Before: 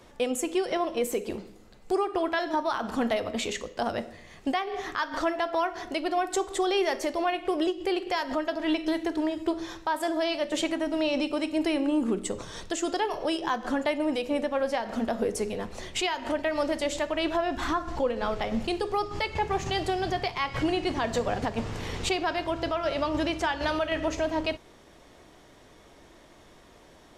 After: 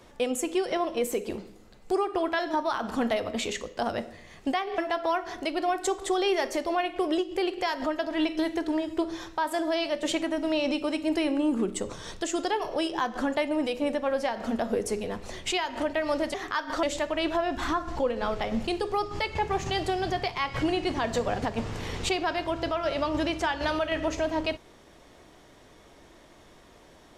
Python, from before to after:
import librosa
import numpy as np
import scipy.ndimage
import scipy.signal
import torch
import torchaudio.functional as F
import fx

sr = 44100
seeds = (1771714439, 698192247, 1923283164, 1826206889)

y = fx.edit(x, sr, fx.move(start_s=4.78, length_s=0.49, to_s=16.83), tone=tone)